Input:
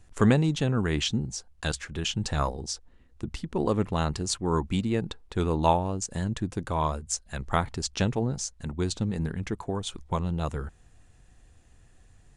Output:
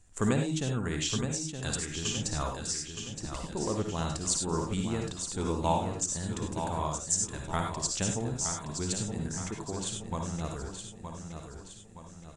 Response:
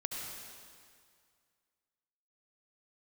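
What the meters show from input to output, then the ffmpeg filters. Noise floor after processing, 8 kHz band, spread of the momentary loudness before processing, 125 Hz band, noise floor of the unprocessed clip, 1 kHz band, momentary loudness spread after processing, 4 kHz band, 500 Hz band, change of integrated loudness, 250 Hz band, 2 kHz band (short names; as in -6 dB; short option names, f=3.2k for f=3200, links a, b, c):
-48 dBFS, +4.5 dB, 10 LU, -5.5 dB, -57 dBFS, -4.5 dB, 13 LU, -2.5 dB, -5.0 dB, -3.5 dB, -5.0 dB, -4.5 dB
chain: -filter_complex "[0:a]equalizer=f=7.7k:t=o:w=0.74:g=12,aecho=1:1:919|1838|2757|3676|4595:0.422|0.198|0.0932|0.0438|0.0206[a];[1:a]atrim=start_sample=2205,atrim=end_sample=6174,asetrate=57330,aresample=44100[b];[a][b]afir=irnorm=-1:irlink=0,volume=-3dB"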